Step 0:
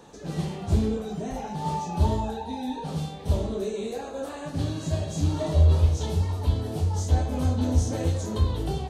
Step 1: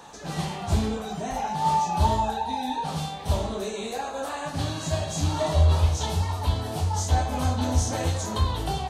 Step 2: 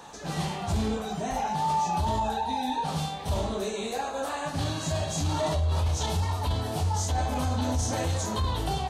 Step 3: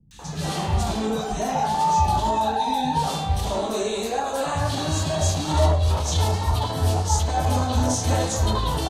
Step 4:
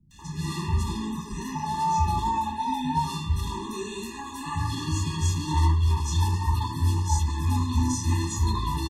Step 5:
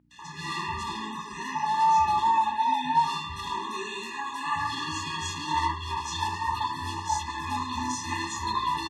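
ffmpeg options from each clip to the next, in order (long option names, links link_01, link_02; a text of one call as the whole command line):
ffmpeg -i in.wav -af "lowshelf=frequency=600:width_type=q:width=1.5:gain=-7.5,volume=6.5dB" out.wav
ffmpeg -i in.wav -af "alimiter=limit=-19.5dB:level=0:latency=1:release=11" out.wav
ffmpeg -i in.wav -filter_complex "[0:a]acrossover=split=170|2100[link_01][link_02][link_03];[link_03]adelay=110[link_04];[link_02]adelay=190[link_05];[link_01][link_05][link_04]amix=inputs=3:normalize=0,volume=6.5dB" out.wav
ffmpeg -i in.wav -filter_complex "[0:a]asplit=2[link_01][link_02];[link_02]adelay=12,volume=-12dB[link_03];[link_01][link_03]amix=inputs=2:normalize=0,afftfilt=real='re*eq(mod(floor(b*sr/1024/410),2),0)':imag='im*eq(mod(floor(b*sr/1024/410),2),0)':win_size=1024:overlap=0.75,volume=-3dB" out.wav
ffmpeg -i in.wav -af "aeval=exprs='val(0)+0.00282*(sin(2*PI*60*n/s)+sin(2*PI*2*60*n/s)/2+sin(2*PI*3*60*n/s)/3+sin(2*PI*4*60*n/s)/4+sin(2*PI*5*60*n/s)/5)':channel_layout=same,bandpass=frequency=1700:width_type=q:width=0.91:csg=0,volume=8dB" out.wav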